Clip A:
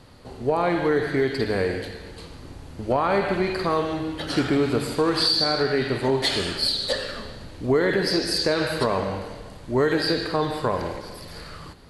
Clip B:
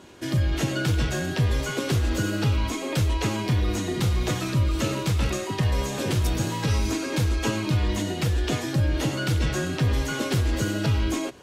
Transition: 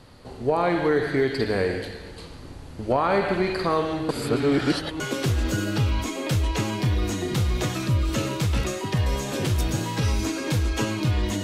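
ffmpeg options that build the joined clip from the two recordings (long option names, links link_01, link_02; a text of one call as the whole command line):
ffmpeg -i cue0.wav -i cue1.wav -filter_complex "[0:a]apad=whole_dur=11.43,atrim=end=11.43,asplit=2[link_01][link_02];[link_01]atrim=end=4.092[link_03];[link_02]atrim=start=4.088:end=5.002,asetpts=PTS-STARTPTS,areverse[link_04];[1:a]atrim=start=1.658:end=8.09[link_05];[link_03][link_04]acrossfade=duration=0.004:curve1=hsin:curve2=hsin[link_06];[link_06][link_05]acrossfade=duration=0.004:curve1=hsin:curve2=hsin" out.wav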